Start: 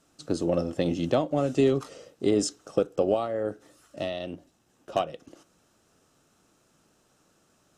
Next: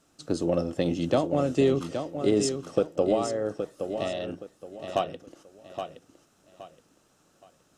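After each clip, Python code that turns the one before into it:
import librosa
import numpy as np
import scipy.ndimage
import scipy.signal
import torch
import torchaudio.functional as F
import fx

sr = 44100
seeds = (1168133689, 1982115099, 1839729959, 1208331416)

y = fx.echo_feedback(x, sr, ms=820, feedback_pct=29, wet_db=-8.0)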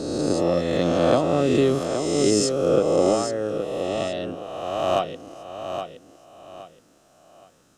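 y = fx.spec_swells(x, sr, rise_s=1.79)
y = y * 10.0 ** (1.5 / 20.0)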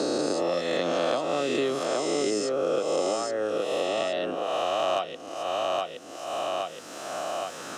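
y = fx.weighting(x, sr, curve='A')
y = fx.band_squash(y, sr, depth_pct=100)
y = y * 10.0 ** (-2.0 / 20.0)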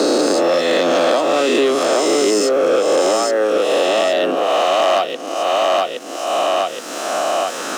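y = fx.leveller(x, sr, passes=2)
y = scipy.signal.sosfilt(scipy.signal.butter(4, 210.0, 'highpass', fs=sr, output='sos'), y)
y = y * 10.0 ** (6.0 / 20.0)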